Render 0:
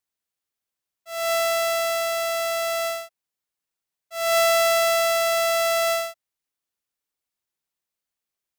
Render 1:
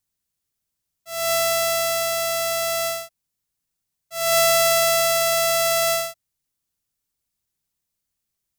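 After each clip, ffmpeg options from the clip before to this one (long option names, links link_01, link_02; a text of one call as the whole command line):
ffmpeg -i in.wav -af "bass=frequency=250:gain=14,treble=frequency=4000:gain=7" out.wav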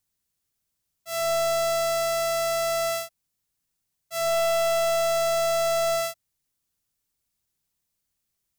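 ffmpeg -i in.wav -af "asoftclip=type=hard:threshold=-22.5dB,volume=1dB" out.wav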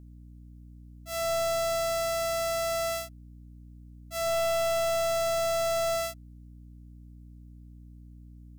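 ffmpeg -i in.wav -af "aeval=exprs='val(0)+0.00708*(sin(2*PI*60*n/s)+sin(2*PI*2*60*n/s)/2+sin(2*PI*3*60*n/s)/3+sin(2*PI*4*60*n/s)/4+sin(2*PI*5*60*n/s)/5)':channel_layout=same,volume=-4dB" out.wav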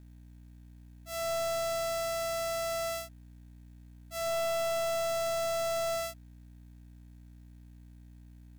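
ffmpeg -i in.wav -af "acrusher=bits=5:mode=log:mix=0:aa=0.000001,volume=-4dB" out.wav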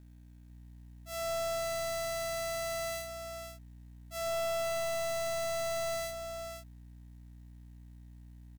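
ffmpeg -i in.wav -af "aecho=1:1:499:0.422,volume=-2dB" out.wav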